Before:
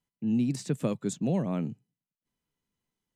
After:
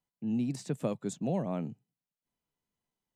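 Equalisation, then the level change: peaking EQ 730 Hz +6.5 dB 1 oct; -5.0 dB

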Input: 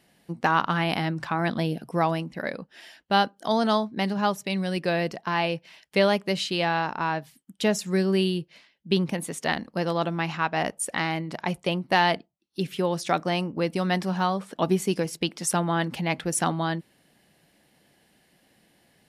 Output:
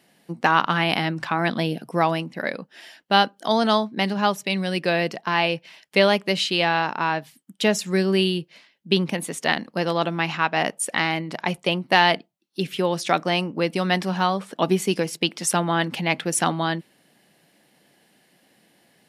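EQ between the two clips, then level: high-pass 150 Hz; dynamic bell 2.8 kHz, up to +4 dB, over -43 dBFS, Q 1; +3.0 dB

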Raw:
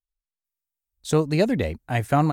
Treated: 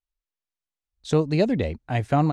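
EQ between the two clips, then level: low-pass 5.3 kHz 12 dB/octave; dynamic bell 1.5 kHz, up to -5 dB, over -37 dBFS, Q 1.1; 0.0 dB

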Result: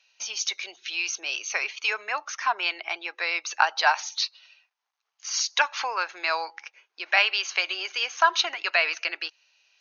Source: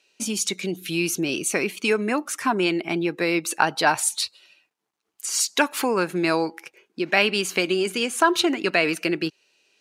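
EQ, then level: high-pass 740 Hz 24 dB/octave; brick-wall FIR low-pass 6.7 kHz; 0.0 dB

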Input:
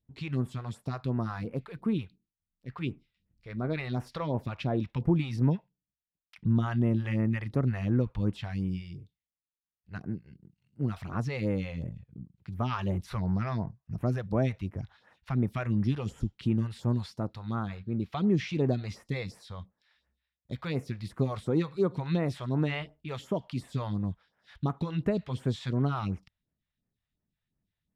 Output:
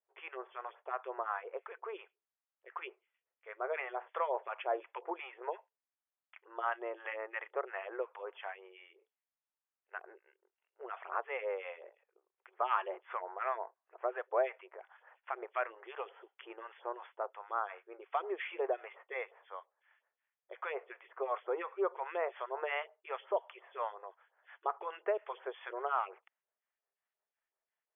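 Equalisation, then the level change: brick-wall FIR band-pass 350–3500 Hz; three-band isolator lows -23 dB, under 590 Hz, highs -18 dB, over 2.5 kHz; tilt shelf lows +3.5 dB, about 1.2 kHz; +4.0 dB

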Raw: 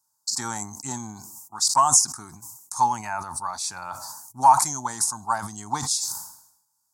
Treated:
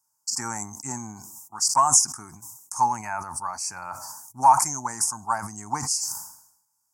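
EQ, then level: Chebyshev band-stop 2.4–5.2 kHz, order 2; 0.0 dB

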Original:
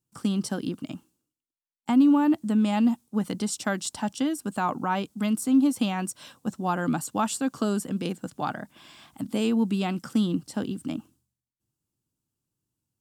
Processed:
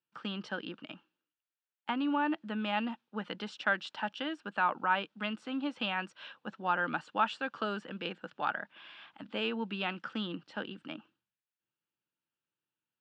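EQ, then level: cabinet simulation 250–2500 Hz, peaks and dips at 260 Hz -8 dB, 390 Hz -4 dB, 720 Hz -7 dB, 1.1 kHz -7 dB, 2.1 kHz -9 dB; tilt shelf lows -9.5 dB, about 860 Hz; +1.5 dB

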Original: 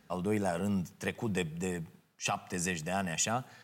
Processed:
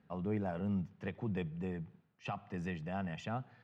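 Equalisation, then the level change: high-pass 80 Hz; distance through air 340 m; bass shelf 130 Hz +11.5 dB; -6.5 dB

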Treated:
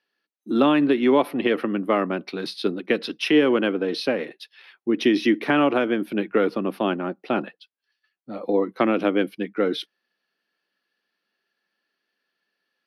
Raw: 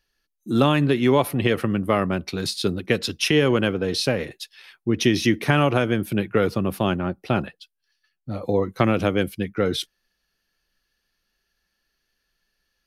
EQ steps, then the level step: boxcar filter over 6 samples; high-pass 220 Hz 24 dB/octave; dynamic bell 300 Hz, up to +5 dB, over -35 dBFS, Q 4.7; 0.0 dB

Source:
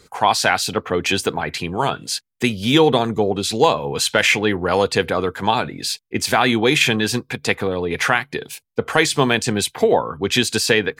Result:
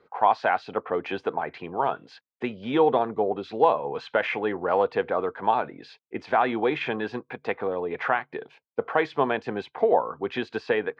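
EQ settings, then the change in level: band-pass filter 760 Hz, Q 0.93; distance through air 240 m; -2.0 dB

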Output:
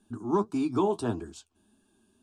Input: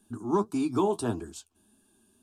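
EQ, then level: distance through air 54 m; 0.0 dB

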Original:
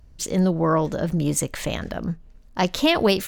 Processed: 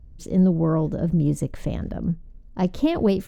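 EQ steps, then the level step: tilt shelf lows +10 dB, about 660 Hz; -5.5 dB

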